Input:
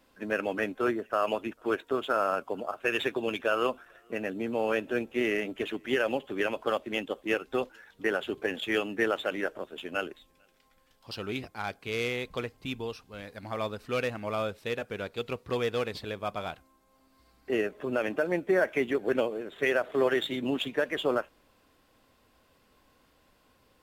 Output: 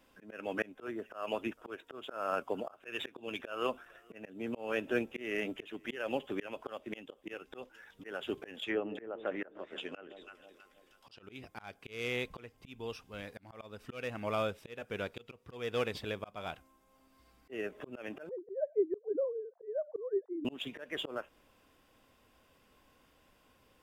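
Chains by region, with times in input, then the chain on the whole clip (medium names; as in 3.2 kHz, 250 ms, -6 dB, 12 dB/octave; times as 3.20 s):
8.63–11.23 s: low-pass that closes with the level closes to 790 Hz, closed at -24.5 dBFS + bass shelf 240 Hz -6.5 dB + echo whose repeats swap between lows and highs 161 ms, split 810 Hz, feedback 63%, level -12.5 dB
18.29–20.45 s: formants replaced by sine waves + inverse Chebyshev low-pass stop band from 2.9 kHz, stop band 60 dB
whole clip: peaking EQ 2.8 kHz +2.5 dB 0.58 oct; band-stop 4.2 kHz, Q 7.5; slow attack 305 ms; trim -2 dB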